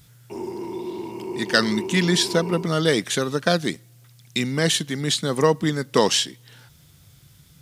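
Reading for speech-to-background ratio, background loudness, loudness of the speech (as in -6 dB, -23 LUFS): 10.5 dB, -32.5 LUFS, -22.0 LUFS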